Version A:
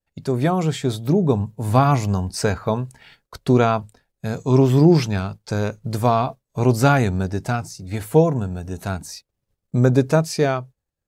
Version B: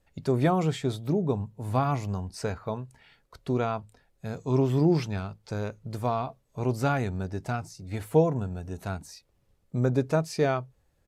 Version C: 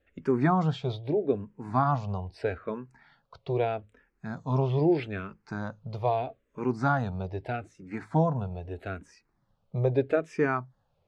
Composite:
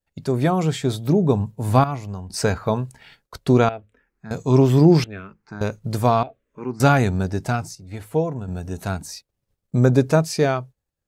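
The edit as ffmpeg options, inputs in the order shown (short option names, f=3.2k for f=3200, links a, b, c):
-filter_complex "[1:a]asplit=2[a][b];[2:a]asplit=3[c][d][e];[0:a]asplit=6[f][g][h][i][j][k];[f]atrim=end=1.842[l];[a]atrim=start=1.838:end=2.302[m];[g]atrim=start=2.298:end=3.692[n];[c]atrim=start=3.688:end=4.312[o];[h]atrim=start=4.308:end=5.042[p];[d]atrim=start=5.038:end=5.612[q];[i]atrim=start=5.608:end=6.232[r];[e]atrim=start=6.228:end=6.802[s];[j]atrim=start=6.798:end=7.752[t];[b]atrim=start=7.748:end=8.482[u];[k]atrim=start=8.478[v];[l][m]acrossfade=d=0.004:c1=hsin:c2=hsin[w];[w][n]acrossfade=d=0.004:c1=hsin:c2=hsin[x];[x][o]acrossfade=d=0.004:c1=hsin:c2=hsin[y];[y][p]acrossfade=d=0.004:c1=hsin:c2=hsin[z];[z][q]acrossfade=d=0.004:c1=hsin:c2=hsin[aa];[aa][r]acrossfade=d=0.004:c1=hsin:c2=hsin[ab];[ab][s]acrossfade=d=0.004:c1=hsin:c2=hsin[ac];[ac][t]acrossfade=d=0.004:c1=hsin:c2=hsin[ad];[ad][u]acrossfade=d=0.004:c1=hsin:c2=hsin[ae];[ae][v]acrossfade=d=0.004:c1=hsin:c2=hsin"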